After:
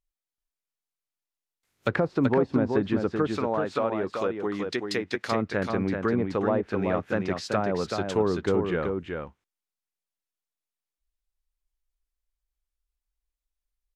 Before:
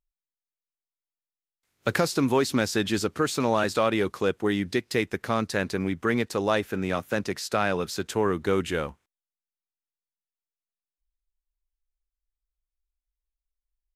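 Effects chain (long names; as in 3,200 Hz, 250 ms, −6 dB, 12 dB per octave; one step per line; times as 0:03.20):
treble cut that deepens with the level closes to 850 Hz, closed at −20 dBFS
0:03.27–0:05.32: spectral tilt +3 dB per octave
single-tap delay 382 ms −5 dB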